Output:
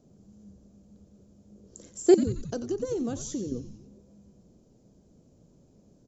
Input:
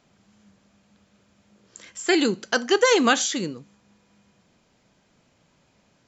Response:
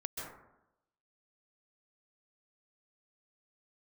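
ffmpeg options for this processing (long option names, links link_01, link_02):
-filter_complex "[0:a]firequalizer=gain_entry='entry(420,0);entry(910,-17);entry(2000,-28);entry(6000,-10)':delay=0.05:min_phase=1,asettb=1/sr,asplit=3[link_01][link_02][link_03];[link_01]atrim=end=2.144[link_04];[link_02]atrim=start=2.14:end=3.52,asetpts=PTS-STARTPTS,afade=type=in:duration=0.004:curve=qsin,afade=type=out:start_time=1.376:duration=0.004:curve=qsin,acompressor=threshold=-38dB:ratio=4[link_05];[link_03]atrim=start=3.516[link_06];[link_04][link_05]acrossfade=duration=0.004:curve1=hsin:curve2=qsin[link_07];[link_07][link_06]acrossfade=duration=0.004:curve1=qsin:curve2=hsin,asplit=7[link_08][link_09][link_10][link_11][link_12][link_13][link_14];[link_09]adelay=90,afreqshift=-130,volume=-11dB[link_15];[link_10]adelay=180,afreqshift=-260,volume=-16dB[link_16];[link_11]adelay=270,afreqshift=-390,volume=-21.1dB[link_17];[link_12]adelay=360,afreqshift=-520,volume=-26.1dB[link_18];[link_13]adelay=450,afreqshift=-650,volume=-31.1dB[link_19];[link_14]adelay=540,afreqshift=-780,volume=-36.2dB[link_20];[link_08][link_15][link_16][link_17][link_18][link_19][link_20]amix=inputs=7:normalize=0,volume=6dB"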